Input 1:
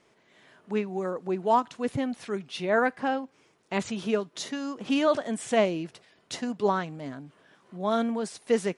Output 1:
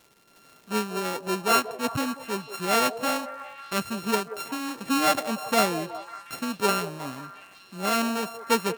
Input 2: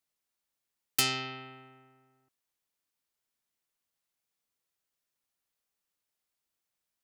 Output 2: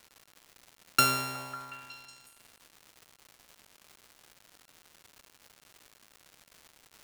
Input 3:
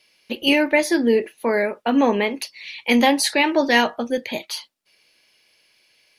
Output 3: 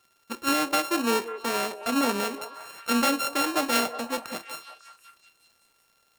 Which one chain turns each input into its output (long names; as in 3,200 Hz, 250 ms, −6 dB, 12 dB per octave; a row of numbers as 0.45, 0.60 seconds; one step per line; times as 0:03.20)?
samples sorted by size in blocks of 32 samples
echo through a band-pass that steps 183 ms, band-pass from 520 Hz, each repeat 0.7 octaves, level −9 dB
surface crackle 300 per second −45 dBFS
normalise the peak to −9 dBFS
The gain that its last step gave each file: +1.0, +4.0, −7.5 decibels